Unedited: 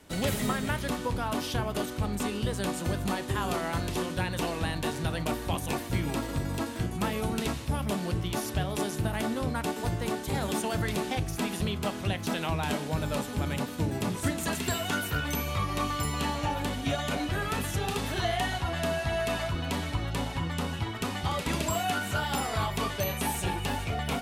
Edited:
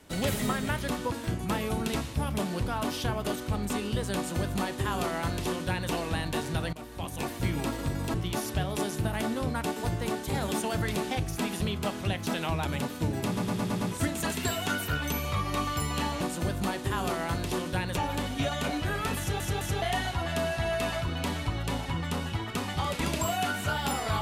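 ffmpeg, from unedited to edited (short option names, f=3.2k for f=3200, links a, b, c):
-filter_complex "[0:a]asplit=16[a][b][c][d][e][f][g][h][i][j][k][l][m][n][o][p];[a]atrim=end=1.122[q];[b]atrim=start=6.638:end=8.142[r];[c]atrim=start=1.118:end=5.23,asetpts=PTS-STARTPTS,afade=t=out:st=4.108:d=0.004:c=hsin:silence=0.141254[s];[d]atrim=start=5.23:end=6.642,asetpts=PTS-STARTPTS,afade=t=in:d=0.67:silence=0.141254[t];[e]atrim=start=8.138:end=12.652[u];[f]atrim=start=13.428:end=14.152[v];[g]atrim=start=14.038:end=14.152[w];[h]atrim=start=14.038:end=14.152[x];[i]atrim=start=14.038:end=14.152[y];[j]atrim=start=14.038:end=14.152[z];[k]atrim=start=14.038:end=16.442[aa];[l]atrim=start=2.648:end=4.412[ab];[m]atrim=start=16.438:end=17.872[ac];[n]atrim=start=17.658:end=17.872[ad];[o]atrim=start=17.658:end=17.872[ae];[p]atrim=start=18.288[af];[q][r]acrossfade=d=0.004:c1=hsin:c2=hsin[ag];[s][t]concat=n=2:v=0:a=1[ah];[ag][ah]acrossfade=d=0.004:c1=hsin:c2=hsin[ai];[ai][u]acrossfade=d=0.004:c1=hsin:c2=hsin[aj];[aj][v]acrossfade=d=0.004:c1=hsin:c2=hsin[ak];[ak][w]acrossfade=d=0.004:c1=hsin:c2=hsin[al];[al][x]acrossfade=d=0.004:c1=hsin:c2=hsin[am];[am][y]acrossfade=d=0.004:c1=hsin:c2=hsin[an];[an][z]acrossfade=d=0.004:c1=hsin:c2=hsin[ao];[ao][aa]acrossfade=d=0.004:c1=hsin:c2=hsin[ap];[ap][ab]acrossfade=d=0.004:c1=hsin:c2=hsin[aq];[aq][ac]acrossfade=d=0.004:c1=hsin:c2=hsin[ar];[ar][ad]acrossfade=d=0.004:c1=hsin:c2=hsin[as];[as][ae]acrossfade=d=0.004:c1=hsin:c2=hsin[at];[at][af]acrossfade=d=0.004:c1=hsin:c2=hsin"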